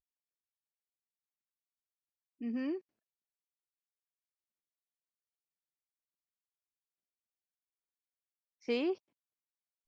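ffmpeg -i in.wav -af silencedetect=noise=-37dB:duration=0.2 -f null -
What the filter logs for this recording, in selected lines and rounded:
silence_start: 0.00
silence_end: 2.42 | silence_duration: 2.42
silence_start: 2.77
silence_end: 8.68 | silence_duration: 5.91
silence_start: 8.93
silence_end: 9.88 | silence_duration: 0.94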